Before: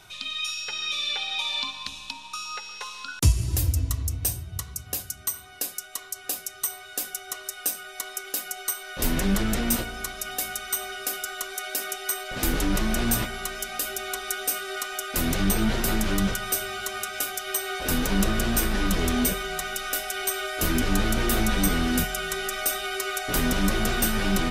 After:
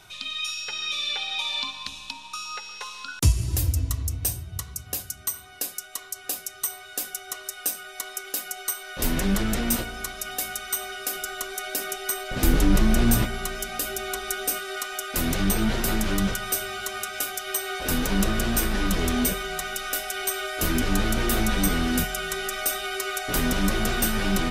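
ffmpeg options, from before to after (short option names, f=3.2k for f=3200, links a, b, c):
-filter_complex "[0:a]asettb=1/sr,asplit=3[a][b][c];[a]atrim=end=11.154[d];[b]atrim=start=11.15:end=14.6,asetpts=PTS-STARTPTS,afade=t=in:d=0.004:c=qsin,afade=t=out:st=3.446:d=0.004:c=qsin,lowshelf=f=380:g=7.5[e];[c]atrim=start=14.596[f];[d][e]acrossfade=d=0.004:c1=hsin:c2=qsin[g];[g][f]acrossfade=d=0.004:c1=qsin:c2=hsin"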